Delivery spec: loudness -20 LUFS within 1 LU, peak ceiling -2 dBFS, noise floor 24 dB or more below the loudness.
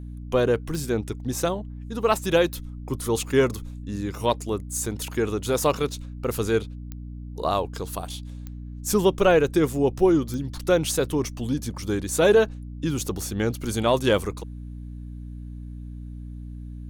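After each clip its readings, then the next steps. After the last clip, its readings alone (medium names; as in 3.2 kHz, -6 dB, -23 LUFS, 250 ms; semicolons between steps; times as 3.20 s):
clicks found 6; hum 60 Hz; highest harmonic 300 Hz; hum level -34 dBFS; loudness -24.5 LUFS; peak level -8.5 dBFS; loudness target -20.0 LUFS
-> de-click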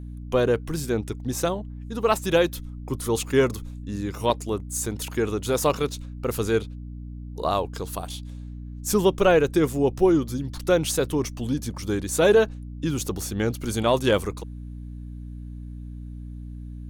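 clicks found 0; hum 60 Hz; highest harmonic 300 Hz; hum level -34 dBFS
-> de-hum 60 Hz, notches 5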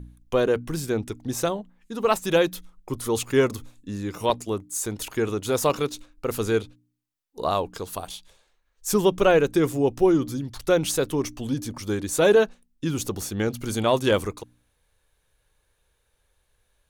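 hum not found; loudness -24.5 LUFS; peak level -5.5 dBFS; loudness target -20.0 LUFS
-> trim +4.5 dB; peak limiter -2 dBFS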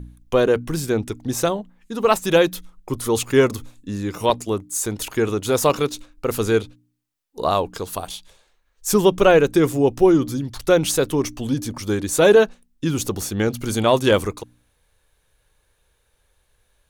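loudness -20.0 LUFS; peak level -2.0 dBFS; noise floor -67 dBFS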